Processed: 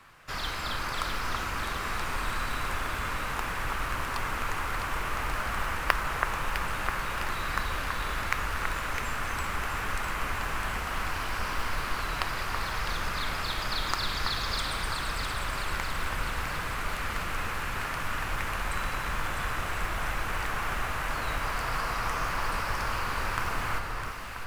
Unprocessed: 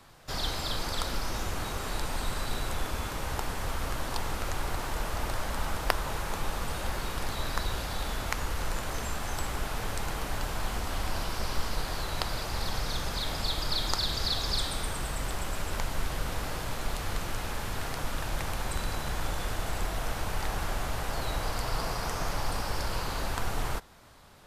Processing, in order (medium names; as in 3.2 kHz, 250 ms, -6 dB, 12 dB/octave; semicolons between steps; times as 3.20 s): high-order bell 1.7 kHz +9 dB; modulation noise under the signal 28 dB; on a send: echo whose repeats swap between lows and highs 328 ms, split 2 kHz, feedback 75%, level -3.5 dB; on the sum: trim -4 dB